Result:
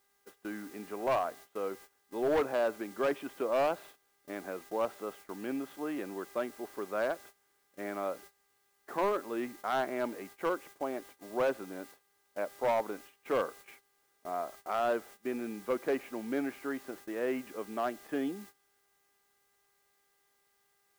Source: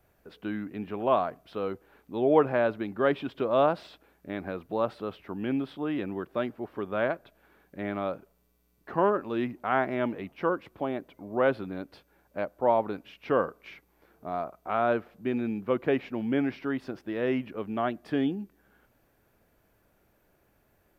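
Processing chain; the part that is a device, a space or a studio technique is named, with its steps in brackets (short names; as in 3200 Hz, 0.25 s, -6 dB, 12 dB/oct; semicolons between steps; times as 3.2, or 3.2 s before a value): aircraft radio (BPF 310–2400 Hz; hard clip -21 dBFS, distortion -13 dB; buzz 400 Hz, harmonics 5, -57 dBFS 0 dB/oct; white noise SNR 21 dB; gate -47 dBFS, range -18 dB); gain -3 dB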